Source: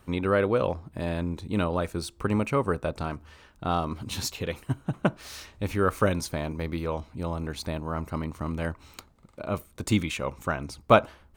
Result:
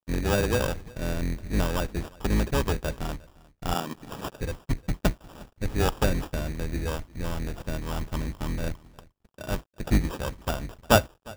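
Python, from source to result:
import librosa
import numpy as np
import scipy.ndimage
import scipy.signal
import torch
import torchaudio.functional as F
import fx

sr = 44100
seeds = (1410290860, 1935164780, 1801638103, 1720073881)

y = fx.octave_divider(x, sr, octaves=2, level_db=4.0)
y = fx.highpass(y, sr, hz=150.0, slope=24, at=(3.74, 4.35))
y = fx.sample_hold(y, sr, seeds[0], rate_hz=2100.0, jitter_pct=0)
y = np.sign(y) * np.maximum(np.abs(y) - 10.0 ** (-48.0 / 20.0), 0.0)
y = y + 10.0 ** (-23.5 / 20.0) * np.pad(y, (int(355 * sr / 1000.0), 0))[:len(y)]
y = F.gain(torch.from_numpy(y), -2.0).numpy()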